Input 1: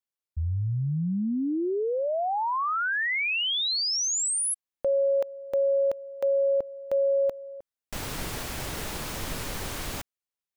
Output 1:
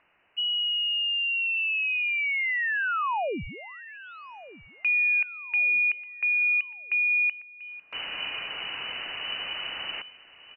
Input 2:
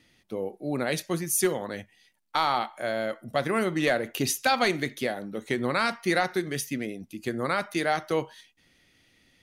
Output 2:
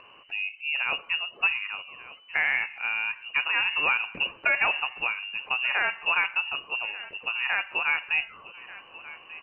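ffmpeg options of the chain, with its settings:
-af "lowpass=f=2.6k:t=q:w=0.5098,lowpass=f=2.6k:t=q:w=0.6013,lowpass=f=2.6k:t=q:w=0.9,lowpass=f=2.6k:t=q:w=2.563,afreqshift=-3000,acompressor=mode=upward:threshold=-40dB:ratio=2.5:attack=2.7:release=45:knee=2.83:detection=peak,aecho=1:1:1189|2378|3567:0.133|0.0467|0.0163"

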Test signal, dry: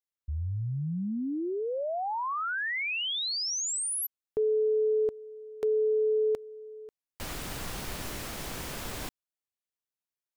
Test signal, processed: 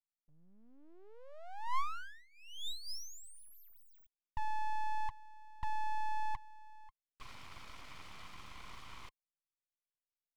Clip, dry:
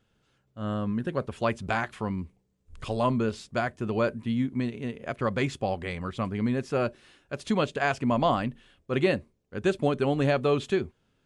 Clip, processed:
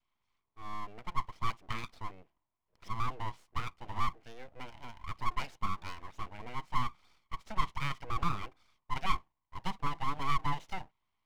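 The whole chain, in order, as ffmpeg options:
-filter_complex "[0:a]asplit=3[a][b][c];[a]bandpass=f=530:t=q:w=8,volume=0dB[d];[b]bandpass=f=1.84k:t=q:w=8,volume=-6dB[e];[c]bandpass=f=2.48k:t=q:w=8,volume=-9dB[f];[d][e][f]amix=inputs=3:normalize=0,adynamicequalizer=threshold=0.00282:dfrequency=720:dqfactor=2.2:tfrequency=720:tqfactor=2.2:attack=5:release=100:ratio=0.375:range=2.5:mode=boostabove:tftype=bell,aeval=exprs='abs(val(0))':c=same,volume=3dB"

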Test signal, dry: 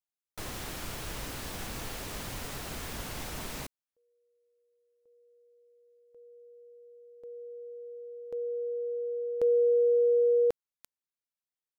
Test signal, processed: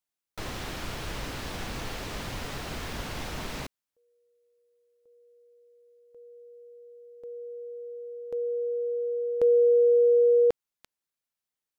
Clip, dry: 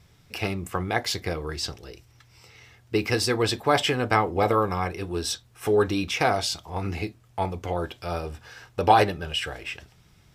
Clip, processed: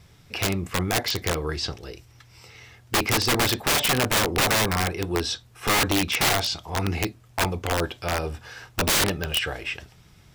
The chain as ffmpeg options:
-filter_complex "[0:a]acrossover=split=5900[a][b];[b]acompressor=threshold=-54dB:ratio=4:attack=1:release=60[c];[a][c]amix=inputs=2:normalize=0,aeval=exprs='(mod(9.44*val(0)+1,2)-1)/9.44':c=same,volume=4dB"

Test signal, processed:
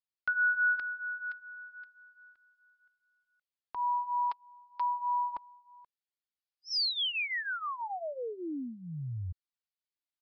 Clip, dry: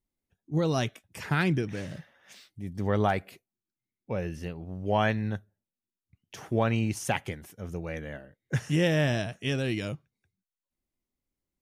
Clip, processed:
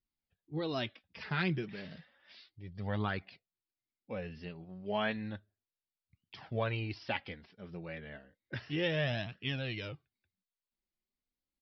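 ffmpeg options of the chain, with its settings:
-af "highshelf=f=2.5k:g=9.5,flanger=delay=0.6:depth=5:regen=-19:speed=0.32:shape=triangular,aresample=11025,aresample=44100,volume=-5.5dB"

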